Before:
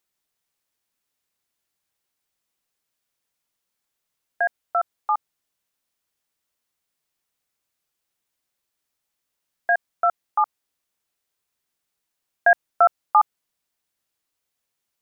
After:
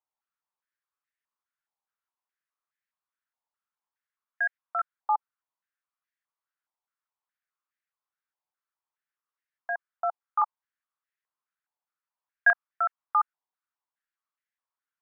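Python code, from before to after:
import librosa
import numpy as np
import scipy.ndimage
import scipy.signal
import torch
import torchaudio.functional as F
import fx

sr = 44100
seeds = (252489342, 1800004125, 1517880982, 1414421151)

y = fx.filter_held_bandpass(x, sr, hz=4.8, low_hz=880.0, high_hz=1800.0)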